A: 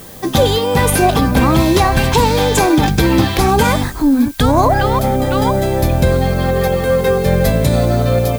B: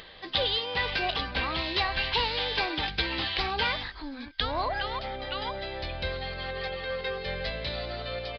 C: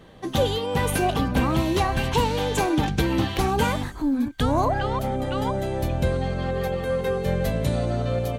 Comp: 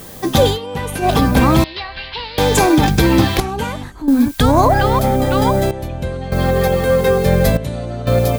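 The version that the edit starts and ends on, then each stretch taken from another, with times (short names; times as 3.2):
A
0.53–1.06 from C, crossfade 0.10 s
1.64–2.38 from B
3.4–4.08 from C
5.71–6.32 from C
7.57–8.07 from C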